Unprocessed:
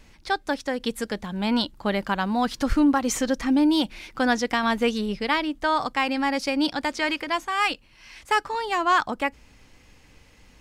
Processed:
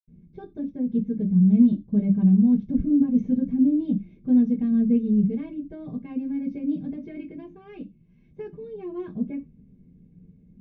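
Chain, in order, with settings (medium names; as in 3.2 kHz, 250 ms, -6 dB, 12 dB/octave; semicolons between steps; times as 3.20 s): dynamic bell 2.6 kHz, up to +6 dB, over -47 dBFS, Q 6.2; reverberation, pre-delay 76 ms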